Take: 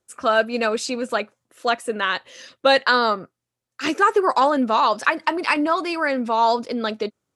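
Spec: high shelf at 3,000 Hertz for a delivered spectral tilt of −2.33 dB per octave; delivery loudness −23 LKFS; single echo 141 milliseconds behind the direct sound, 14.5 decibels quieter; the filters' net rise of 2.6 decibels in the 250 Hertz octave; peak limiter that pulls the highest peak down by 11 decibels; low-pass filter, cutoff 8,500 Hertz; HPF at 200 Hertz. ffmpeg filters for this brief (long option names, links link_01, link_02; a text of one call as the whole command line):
ffmpeg -i in.wav -af "highpass=200,lowpass=8500,equalizer=frequency=250:width_type=o:gain=4.5,highshelf=frequency=3000:gain=-6,alimiter=limit=-15.5dB:level=0:latency=1,aecho=1:1:141:0.188,volume=2.5dB" out.wav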